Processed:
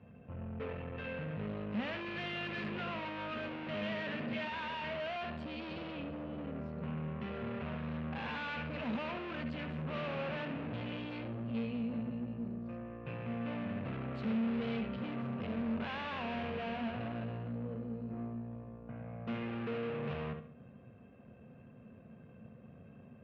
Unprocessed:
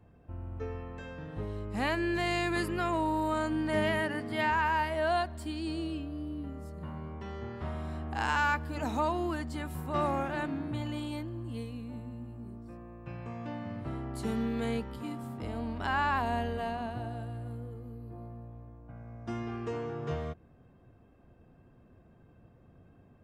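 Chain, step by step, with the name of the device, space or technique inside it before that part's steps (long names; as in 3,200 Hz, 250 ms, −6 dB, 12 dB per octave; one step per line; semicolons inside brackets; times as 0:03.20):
analogue delay pedal into a guitar amplifier (bucket-brigade delay 71 ms, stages 2,048, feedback 35%, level −11 dB; tube saturation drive 44 dB, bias 0.7; loudspeaker in its box 93–3,500 Hz, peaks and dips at 140 Hz +4 dB, 220 Hz +10 dB, 320 Hz −8 dB, 520 Hz +6 dB, 840 Hz −4 dB, 2,600 Hz +7 dB)
level +5.5 dB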